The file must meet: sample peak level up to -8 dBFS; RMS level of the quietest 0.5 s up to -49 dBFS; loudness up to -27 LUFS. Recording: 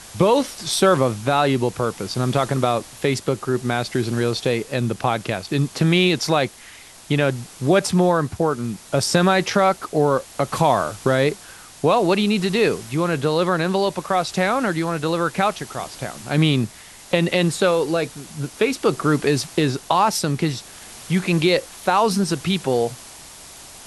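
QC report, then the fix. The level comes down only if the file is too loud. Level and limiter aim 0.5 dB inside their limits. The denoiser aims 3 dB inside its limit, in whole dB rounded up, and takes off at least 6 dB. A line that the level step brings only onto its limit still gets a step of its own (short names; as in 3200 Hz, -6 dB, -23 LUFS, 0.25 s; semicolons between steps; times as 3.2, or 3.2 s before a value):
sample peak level -3.0 dBFS: fail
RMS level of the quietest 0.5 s -43 dBFS: fail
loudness -20.5 LUFS: fail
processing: gain -7 dB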